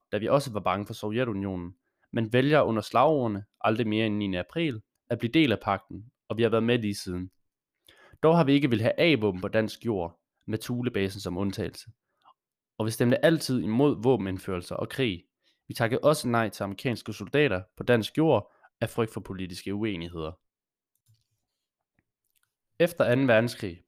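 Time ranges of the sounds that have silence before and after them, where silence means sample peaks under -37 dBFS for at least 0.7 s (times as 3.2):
8.23–11.81
12.8–20.31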